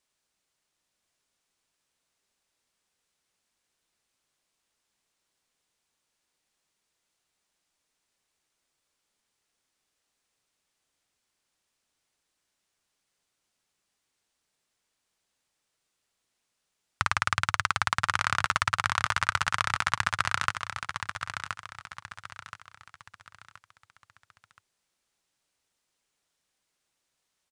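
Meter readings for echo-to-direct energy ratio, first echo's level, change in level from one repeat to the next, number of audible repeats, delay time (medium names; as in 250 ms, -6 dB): -7.0 dB, -7.5 dB, -8.5 dB, 4, 1024 ms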